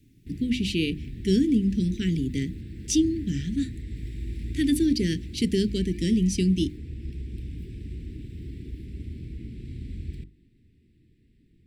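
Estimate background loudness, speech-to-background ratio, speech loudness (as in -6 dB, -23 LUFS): -38.5 LUFS, 12.5 dB, -26.0 LUFS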